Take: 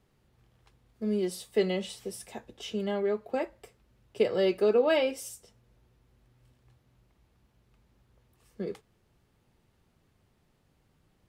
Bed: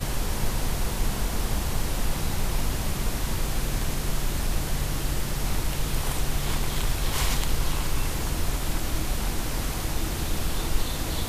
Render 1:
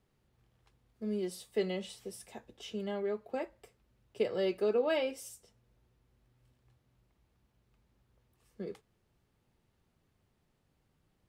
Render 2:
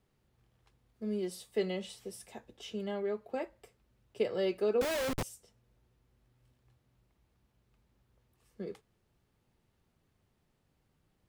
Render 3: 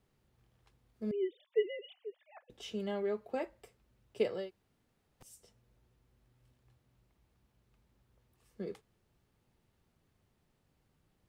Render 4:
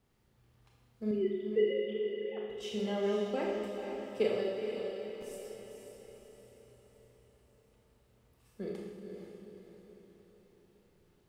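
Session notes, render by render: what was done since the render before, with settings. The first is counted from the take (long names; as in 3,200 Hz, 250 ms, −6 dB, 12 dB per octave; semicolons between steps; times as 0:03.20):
level −6 dB
0:04.81–0:05.23: comparator with hysteresis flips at −41 dBFS
0:01.11–0:02.50: three sine waves on the formant tracks; 0:04.39–0:05.32: fill with room tone, crossfade 0.24 s
on a send: feedback delay with all-pass diffusion 474 ms, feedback 51%, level −6 dB; on the sum: four-comb reverb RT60 1.3 s, combs from 26 ms, DRR −1 dB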